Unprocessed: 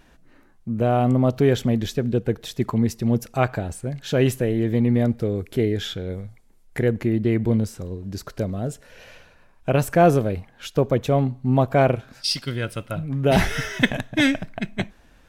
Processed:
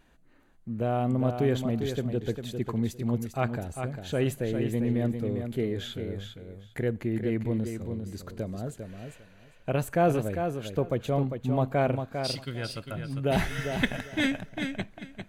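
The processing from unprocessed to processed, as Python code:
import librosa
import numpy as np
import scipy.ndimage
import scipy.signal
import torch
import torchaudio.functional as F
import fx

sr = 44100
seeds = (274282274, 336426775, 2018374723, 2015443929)

y = fx.notch(x, sr, hz=5400.0, q=5.7)
y = fx.echo_feedback(y, sr, ms=400, feedback_pct=17, wet_db=-7.0)
y = y * 10.0 ** (-8.0 / 20.0)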